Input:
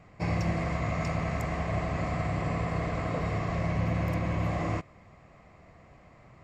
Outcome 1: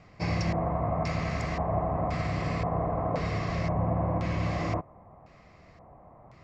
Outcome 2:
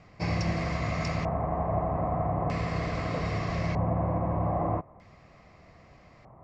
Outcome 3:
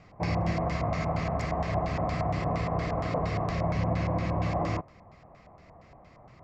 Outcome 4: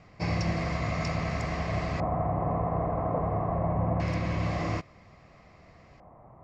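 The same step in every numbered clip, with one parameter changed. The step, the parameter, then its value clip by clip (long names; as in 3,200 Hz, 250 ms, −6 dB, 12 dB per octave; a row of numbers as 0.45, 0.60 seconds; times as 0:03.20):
auto-filter low-pass, speed: 0.95, 0.4, 4.3, 0.25 Hertz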